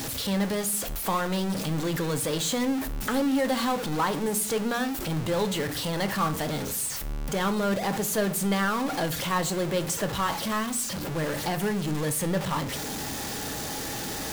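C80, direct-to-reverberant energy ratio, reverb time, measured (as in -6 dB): 21.5 dB, 8.5 dB, 0.55 s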